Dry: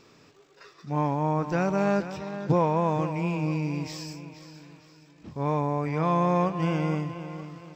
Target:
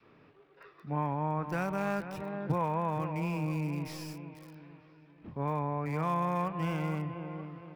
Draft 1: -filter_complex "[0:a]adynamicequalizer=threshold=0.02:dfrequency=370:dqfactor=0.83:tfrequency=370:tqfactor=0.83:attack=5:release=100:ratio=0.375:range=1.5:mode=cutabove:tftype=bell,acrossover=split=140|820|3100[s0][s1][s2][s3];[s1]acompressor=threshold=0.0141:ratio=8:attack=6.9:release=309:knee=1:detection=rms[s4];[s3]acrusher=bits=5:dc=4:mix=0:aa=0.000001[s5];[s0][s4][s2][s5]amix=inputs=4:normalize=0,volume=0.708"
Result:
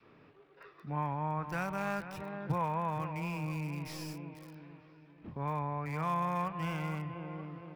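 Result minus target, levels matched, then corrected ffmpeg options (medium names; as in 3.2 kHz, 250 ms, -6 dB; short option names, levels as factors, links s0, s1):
compression: peak gain reduction +8 dB
-filter_complex "[0:a]adynamicequalizer=threshold=0.02:dfrequency=370:dqfactor=0.83:tfrequency=370:tqfactor=0.83:attack=5:release=100:ratio=0.375:range=1.5:mode=cutabove:tftype=bell,acrossover=split=140|820|3100[s0][s1][s2][s3];[s1]acompressor=threshold=0.0398:ratio=8:attack=6.9:release=309:knee=1:detection=rms[s4];[s3]acrusher=bits=5:dc=4:mix=0:aa=0.000001[s5];[s0][s4][s2][s5]amix=inputs=4:normalize=0,volume=0.708"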